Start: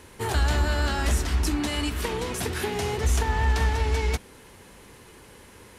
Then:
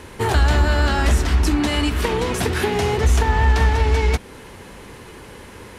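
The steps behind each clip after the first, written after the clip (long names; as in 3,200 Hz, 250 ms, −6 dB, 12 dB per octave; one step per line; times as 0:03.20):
high-shelf EQ 5,000 Hz −7.5 dB
in parallel at −1.5 dB: downward compressor, threshold −30 dBFS, peak gain reduction 11.5 dB
on the sum: level +5 dB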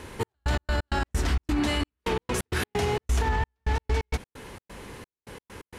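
gate pattern "xx..x.x.x.xx.x" 131 BPM −60 dB
brickwall limiter −14 dBFS, peak gain reduction 6 dB
level −3 dB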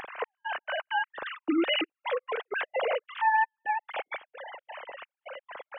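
three sine waves on the formant tracks
upward compression, threshold −31 dBFS
level −3.5 dB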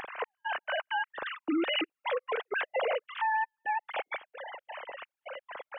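brickwall limiter −22.5 dBFS, peak gain reduction 7.5 dB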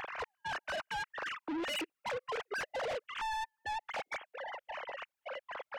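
soft clipping −35.5 dBFS, distortion −8 dB
level +1 dB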